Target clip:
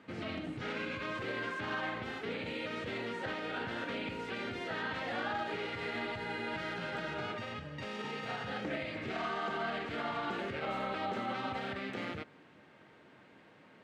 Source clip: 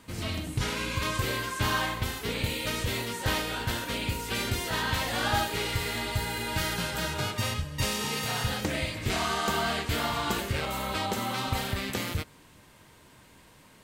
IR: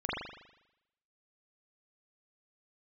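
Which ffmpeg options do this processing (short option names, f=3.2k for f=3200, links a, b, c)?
-af "bandreject=f=1k:w=5.5,alimiter=level_in=1dB:limit=-24dB:level=0:latency=1:release=63,volume=-1dB,highpass=200,lowpass=2.2k"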